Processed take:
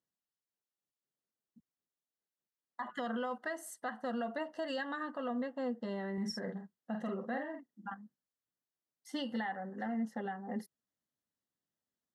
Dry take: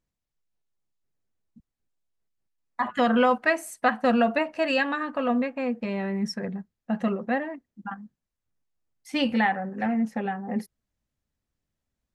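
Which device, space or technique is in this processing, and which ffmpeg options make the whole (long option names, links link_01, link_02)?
PA system with an anti-feedback notch: -filter_complex "[0:a]highpass=190,asuperstop=centerf=2400:order=12:qfactor=3.6,alimiter=limit=-21.5dB:level=0:latency=1:release=188,asettb=1/sr,asplit=3[link_01][link_02][link_03];[link_01]atrim=end=6.134[link_04];[link_02]atrim=start=6.13:end=7.9,asetpts=PTS-STARTPTS,afade=type=in:duration=0.004:curve=qsin,afade=type=out:start_time=1.766:duration=0.004:curve=qsin,asplit=2[link_05][link_06];[link_06]adelay=47,volume=-4.5dB[link_07];[link_05][link_07]amix=inputs=2:normalize=0,atrim=end_sample=78057[link_08];[link_03]atrim=start=7.896[link_09];[link_04][link_08]acrossfade=duration=0.004:curve1=hsin:curve2=qsin[link_10];[link_10][link_09]acrossfade=duration=0.004:curve1=qsin:curve2=hsin,volume=-7.5dB"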